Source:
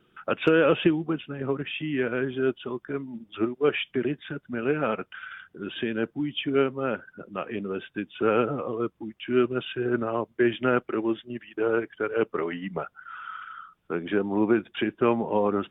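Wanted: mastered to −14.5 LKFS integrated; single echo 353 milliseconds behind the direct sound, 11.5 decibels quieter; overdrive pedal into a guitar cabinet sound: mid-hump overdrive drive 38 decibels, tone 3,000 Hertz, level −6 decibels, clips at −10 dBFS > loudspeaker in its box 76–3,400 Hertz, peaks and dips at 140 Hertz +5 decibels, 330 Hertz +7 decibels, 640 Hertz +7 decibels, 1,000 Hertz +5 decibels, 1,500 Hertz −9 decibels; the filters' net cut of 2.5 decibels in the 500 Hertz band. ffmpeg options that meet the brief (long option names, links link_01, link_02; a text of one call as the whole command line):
ffmpeg -i in.wav -filter_complex "[0:a]equalizer=frequency=500:width_type=o:gain=-8.5,aecho=1:1:353:0.266,asplit=2[link_01][link_02];[link_02]highpass=frequency=720:poles=1,volume=38dB,asoftclip=type=tanh:threshold=-10dB[link_03];[link_01][link_03]amix=inputs=2:normalize=0,lowpass=frequency=3000:poles=1,volume=-6dB,highpass=76,equalizer=frequency=140:width_type=q:width=4:gain=5,equalizer=frequency=330:width_type=q:width=4:gain=7,equalizer=frequency=640:width_type=q:width=4:gain=7,equalizer=frequency=1000:width_type=q:width=4:gain=5,equalizer=frequency=1500:width_type=q:width=4:gain=-9,lowpass=frequency=3400:width=0.5412,lowpass=frequency=3400:width=1.3066,volume=2dB" out.wav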